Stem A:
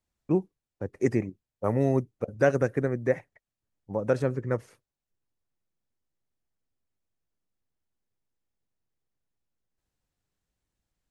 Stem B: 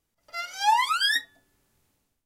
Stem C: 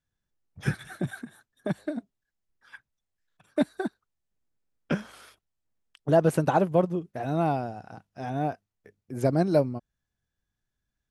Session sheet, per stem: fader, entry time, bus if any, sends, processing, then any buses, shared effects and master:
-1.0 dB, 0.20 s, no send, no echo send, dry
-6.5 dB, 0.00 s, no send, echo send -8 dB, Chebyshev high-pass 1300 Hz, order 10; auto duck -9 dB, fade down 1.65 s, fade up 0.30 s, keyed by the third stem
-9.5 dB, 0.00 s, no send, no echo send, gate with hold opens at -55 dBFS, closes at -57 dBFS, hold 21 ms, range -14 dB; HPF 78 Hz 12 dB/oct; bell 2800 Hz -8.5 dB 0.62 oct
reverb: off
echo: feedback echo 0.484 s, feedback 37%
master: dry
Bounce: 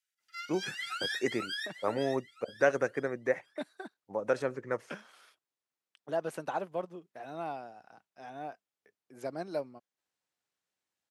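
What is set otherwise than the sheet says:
stem C: missing bell 2800 Hz -8.5 dB 0.62 oct; master: extra weighting filter A

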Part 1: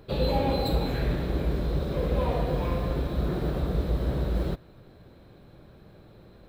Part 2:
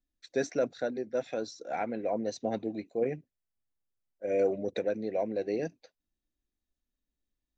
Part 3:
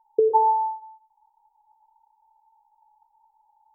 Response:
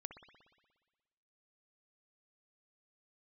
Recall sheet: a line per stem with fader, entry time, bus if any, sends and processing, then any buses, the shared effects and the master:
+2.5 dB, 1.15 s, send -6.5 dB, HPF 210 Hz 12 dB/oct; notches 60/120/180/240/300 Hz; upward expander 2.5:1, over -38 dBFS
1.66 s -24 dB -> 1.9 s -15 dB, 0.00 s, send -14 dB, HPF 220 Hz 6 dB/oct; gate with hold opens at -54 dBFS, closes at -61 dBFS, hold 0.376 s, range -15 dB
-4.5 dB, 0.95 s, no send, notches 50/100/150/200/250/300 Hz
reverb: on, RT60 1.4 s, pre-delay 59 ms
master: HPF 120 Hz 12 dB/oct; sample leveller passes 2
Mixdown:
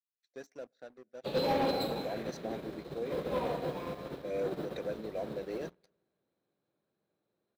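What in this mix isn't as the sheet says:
stem 1 +2.5 dB -> -7.0 dB; stem 3: muted; master: missing HPF 120 Hz 12 dB/oct

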